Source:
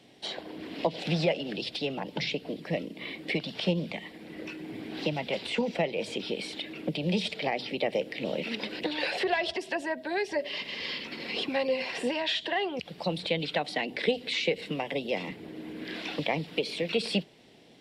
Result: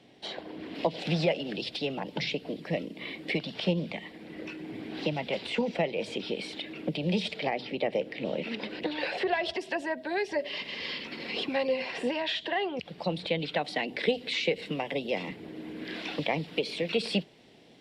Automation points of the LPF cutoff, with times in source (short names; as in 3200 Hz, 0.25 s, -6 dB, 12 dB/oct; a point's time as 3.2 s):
LPF 6 dB/oct
3700 Hz
from 0.75 s 8800 Hz
from 3.41 s 5500 Hz
from 7.49 s 2700 Hz
from 9.45 s 6100 Hz
from 11.72 s 3800 Hz
from 13.59 s 8100 Hz